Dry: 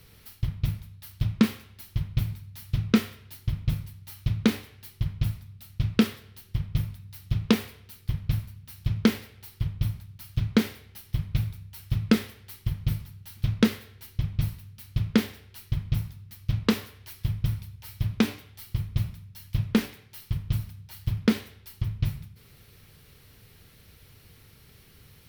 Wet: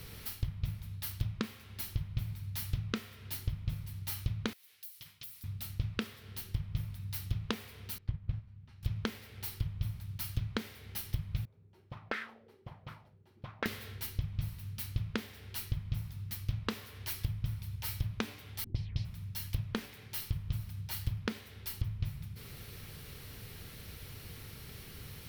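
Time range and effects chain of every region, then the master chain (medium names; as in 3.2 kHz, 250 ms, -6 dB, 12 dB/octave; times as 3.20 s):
4.53–5.44 s: differentiator + compression 3:1, threshold -52 dBFS
7.98–8.83 s: companded quantiser 8-bit + tape spacing loss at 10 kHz 29 dB + upward expansion, over -42 dBFS
11.45–13.66 s: de-hum 56.61 Hz, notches 38 + auto-wah 330–1700 Hz, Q 3.3, up, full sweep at -19 dBFS
18.64–19.05 s: peaking EQ 1.3 kHz -10.5 dB 0.54 oct + touch-sensitive low-pass 240–5000 Hz up, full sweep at -25.5 dBFS
whole clip: compression 12:1, threshold -36 dBFS; dynamic bell 290 Hz, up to -5 dB, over -55 dBFS, Q 1.1; trim +6 dB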